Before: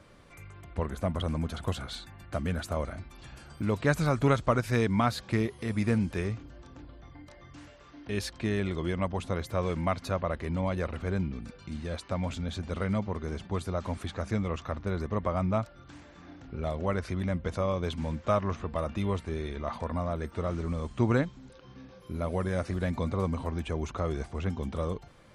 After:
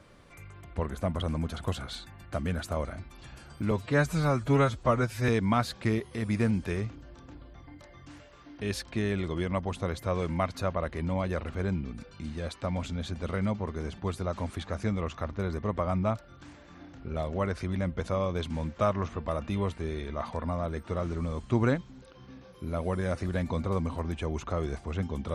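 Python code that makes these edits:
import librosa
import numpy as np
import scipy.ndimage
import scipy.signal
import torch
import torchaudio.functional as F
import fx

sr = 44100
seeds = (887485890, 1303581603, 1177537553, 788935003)

y = fx.edit(x, sr, fx.stretch_span(start_s=3.71, length_s=1.05, factor=1.5), tone=tone)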